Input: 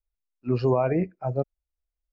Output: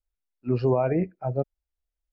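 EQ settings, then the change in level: bell 1100 Hz -6 dB 0.2 oct; high shelf 3900 Hz -8 dB; 0.0 dB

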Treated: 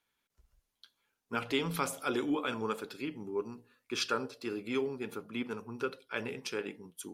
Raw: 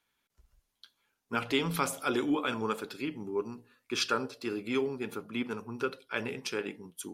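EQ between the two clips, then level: bell 480 Hz +2 dB 0.37 oct; -3.0 dB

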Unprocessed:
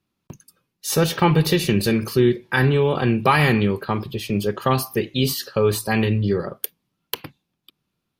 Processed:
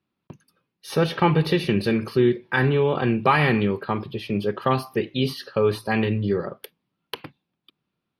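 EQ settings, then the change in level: running mean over 6 samples; low shelf 73 Hz -11.5 dB; -1.0 dB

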